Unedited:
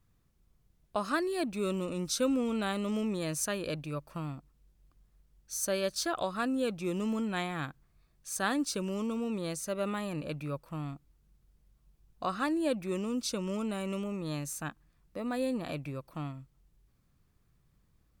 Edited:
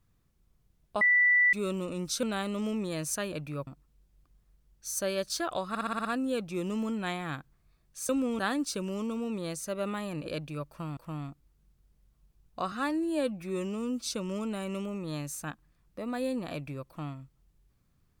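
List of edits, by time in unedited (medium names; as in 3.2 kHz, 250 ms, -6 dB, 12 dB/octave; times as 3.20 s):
1.01–1.53 s: bleep 1.97 kHz -19.5 dBFS
2.23–2.53 s: move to 8.39 s
3.62–4.33 s: swap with 10.26–10.61 s
6.35 s: stutter 0.06 s, 7 plays
12.36–13.28 s: stretch 1.5×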